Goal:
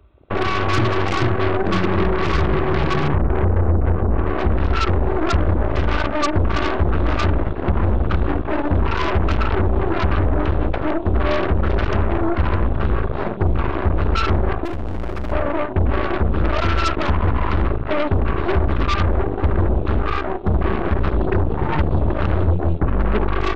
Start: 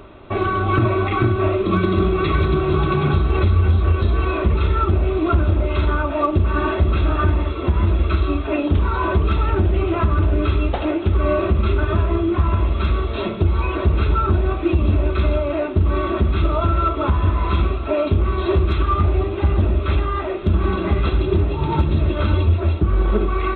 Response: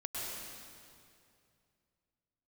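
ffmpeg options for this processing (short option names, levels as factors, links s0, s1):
-filter_complex "[0:a]afwtdn=0.0447,asettb=1/sr,asplit=3[s0][s1][s2];[s0]atrim=end=3.084[s3];[s1]atrim=start=3.08:end=4.39,asetpts=PTS-STARTPTS,afade=t=in:d=0.004:c=qsin,afade=t=out:st=1.306:d=0.004:c=qsin,lowpass=1000[s4];[s2]atrim=start=4.386[s5];[s3][s4]acrossfade=d=0.004:c1=hsin:c2=qsin[s6];[s6][s5]acrossfade=d=0.004:c1=qsin:c2=hsin,asettb=1/sr,asplit=3[s7][s8][s9];[s7]atrim=end=14.654[s10];[s8]atrim=start=14.65:end=15.32,asetpts=PTS-STARTPTS,afade=t=in:d=0.004:c=qsin,afade=t=out:st=0.666:d=0.004:c=qsin,volume=14.1,asoftclip=hard,volume=0.0708[s11];[s9]atrim=start=15.316[s12];[s10][s11]acrossfade=d=0.004:c1=hsin:c2=qsin[s13];[s13][s12]acrossfade=d=0.004:c1=qsin:c2=hsin,aeval=exprs='0.422*(cos(1*acos(clip(val(0)/0.422,-1,1)))-cos(1*PI/2))+0.106*(cos(8*acos(clip(val(0)/0.422,-1,1)))-cos(8*PI/2))':c=same,volume=0.75"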